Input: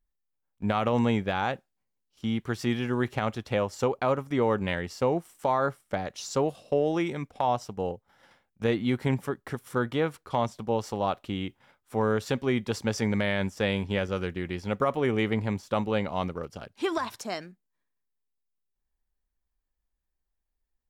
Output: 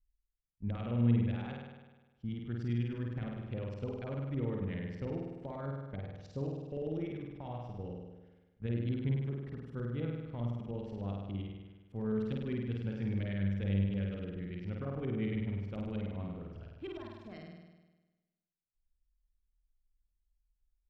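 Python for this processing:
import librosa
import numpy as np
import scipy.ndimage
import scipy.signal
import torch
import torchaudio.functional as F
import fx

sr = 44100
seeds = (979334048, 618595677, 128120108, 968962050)

y = fx.filter_lfo_lowpass(x, sr, shape='saw_up', hz=9.9, low_hz=630.0, high_hz=3500.0, q=1.3)
y = fx.tone_stack(y, sr, knobs='10-0-1')
y = fx.room_flutter(y, sr, wall_m=8.7, rt60_s=1.2)
y = F.gain(torch.from_numpy(y), 6.5).numpy()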